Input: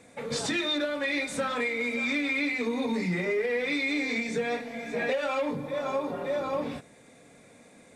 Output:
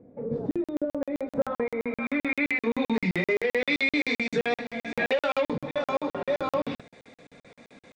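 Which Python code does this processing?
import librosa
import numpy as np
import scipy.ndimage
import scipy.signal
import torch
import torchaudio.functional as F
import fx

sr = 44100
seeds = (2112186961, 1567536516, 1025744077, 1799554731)

y = fx.filter_sweep_lowpass(x, sr, from_hz=400.0, to_hz=4200.0, start_s=0.75, end_s=3.27, q=1.2)
y = fx.buffer_crackle(y, sr, first_s=0.51, period_s=0.13, block=2048, kind='zero')
y = y * 10.0 ** (3.5 / 20.0)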